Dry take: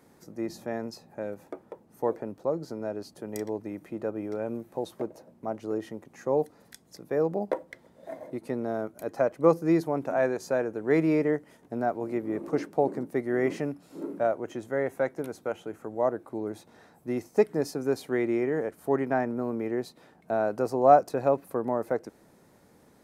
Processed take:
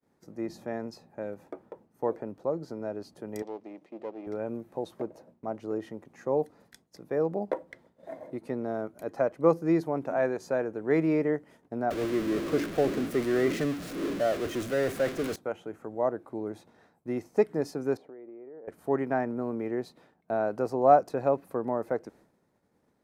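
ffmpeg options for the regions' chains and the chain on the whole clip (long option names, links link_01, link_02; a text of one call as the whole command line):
ffmpeg -i in.wav -filter_complex "[0:a]asettb=1/sr,asplit=3[link_01][link_02][link_03];[link_01]atrim=end=3.424[link_04];[link_02]atrim=start=3.42:end=4.27,asetpts=PTS-STARTPTS,afade=type=in:duration=0.004:curve=qsin,afade=type=out:start_time=0.846:duration=0.004:curve=qsin,aeval=exprs='if(lt(val(0),0),0.251*val(0),val(0))':channel_layout=same,highpass=250,lowpass=5900,equalizer=frequency=1500:width_type=o:width=0.65:gain=-9[link_05];[link_03]atrim=start=4.266[link_06];[link_04][link_05]acrossfade=duration=0.004:curve1=hsin:curve2=qsin[link_07];[link_07][link_06]acrossfade=duration=0.004:curve1=qsin:curve2=hsin,asettb=1/sr,asplit=3[link_08][link_09][link_10];[link_08]atrim=end=11.904[link_11];[link_09]atrim=start=11.9:end=15.36,asetpts=PTS-STARTPTS,afade=type=in:duration=0.004:curve=qsin,afade=type=out:start_time=3.456:duration=0.004:curve=qsin,aeval=exprs='val(0)+0.5*0.0501*sgn(val(0))':channel_layout=same,equalizer=frequency=880:width=4.1:gain=-12.5,agate=range=-33dB:threshold=-29dB:ratio=3:release=100:detection=peak[link_12];[link_10]atrim=start=15.356[link_13];[link_11][link_12]acrossfade=duration=0.004:curve1=hsin:curve2=qsin[link_14];[link_14][link_13]acrossfade=duration=0.004:curve1=qsin:curve2=hsin,asettb=1/sr,asplit=3[link_15][link_16][link_17];[link_15]atrim=end=17.974[link_18];[link_16]atrim=start=17.97:end=18.68,asetpts=PTS-STARTPTS,afade=type=in:duration=0.004:curve=qsin,afade=type=out:start_time=0.706:duration=0.004:curve=qsin,bandpass=frequency=500:width_type=q:width=1.2,acompressor=threshold=-41dB:ratio=12:attack=3.2:release=140:knee=1:detection=peak[link_19];[link_17]atrim=start=18.676[link_20];[link_18][link_19]acrossfade=duration=0.004:curve1=hsin:curve2=qsin[link_21];[link_21][link_20]acrossfade=duration=0.004:curve1=qsin:curve2=hsin,agate=range=-33dB:threshold=-50dB:ratio=3:detection=peak,highshelf=frequency=5200:gain=-7.5,volume=-1.5dB" out.wav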